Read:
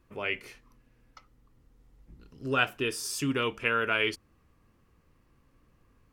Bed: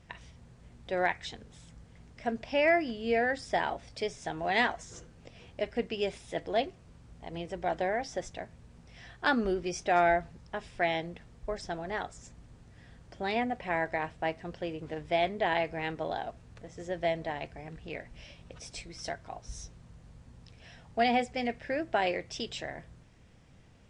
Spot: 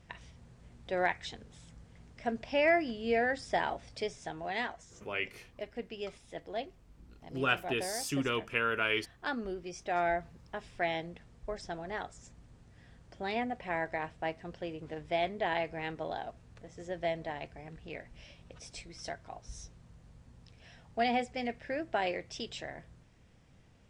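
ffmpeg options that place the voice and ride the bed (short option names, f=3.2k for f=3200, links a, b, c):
-filter_complex "[0:a]adelay=4900,volume=-3.5dB[a];[1:a]volume=3.5dB,afade=t=out:st=3.94:d=0.66:silence=0.446684,afade=t=in:st=9.71:d=0.71:silence=0.562341[b];[a][b]amix=inputs=2:normalize=0"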